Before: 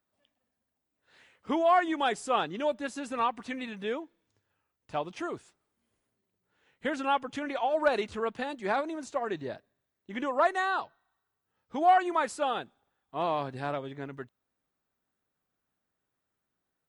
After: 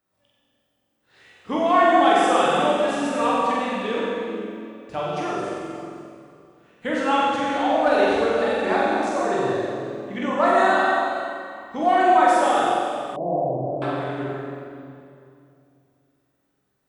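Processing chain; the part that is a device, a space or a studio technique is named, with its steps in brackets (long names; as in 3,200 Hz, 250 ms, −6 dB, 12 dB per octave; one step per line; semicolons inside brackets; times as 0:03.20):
tunnel (flutter between parallel walls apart 7.8 metres, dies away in 0.83 s; convolution reverb RT60 2.6 s, pre-delay 11 ms, DRR −3.5 dB)
0:13.16–0:13.82: elliptic low-pass filter 680 Hz, stop band 70 dB
level +2 dB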